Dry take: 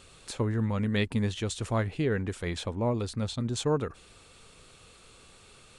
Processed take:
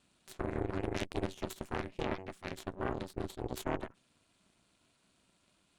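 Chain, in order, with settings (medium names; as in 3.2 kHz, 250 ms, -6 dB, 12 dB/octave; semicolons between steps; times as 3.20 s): ring modulator 190 Hz; Chebyshev shaper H 3 -11 dB, 4 -10 dB, 6 -22 dB, 8 -35 dB, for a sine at -17 dBFS; peak limiter -22.5 dBFS, peak gain reduction 9 dB; trim +1.5 dB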